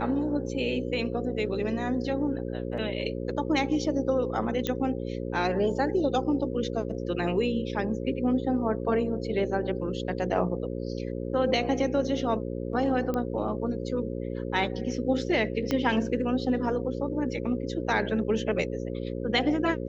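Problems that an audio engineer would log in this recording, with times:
mains buzz 60 Hz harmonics 9 −33 dBFS
0:04.67: click −14 dBFS
0:13.14: click −18 dBFS
0:15.71: click −14 dBFS

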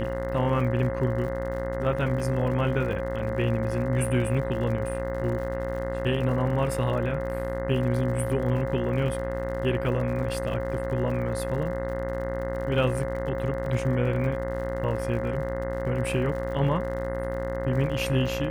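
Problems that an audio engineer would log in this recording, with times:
mains buzz 60 Hz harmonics 35 −33 dBFS
surface crackle 74 per second −36 dBFS
whistle 540 Hz −31 dBFS
0:13.66: drop-out 2.8 ms

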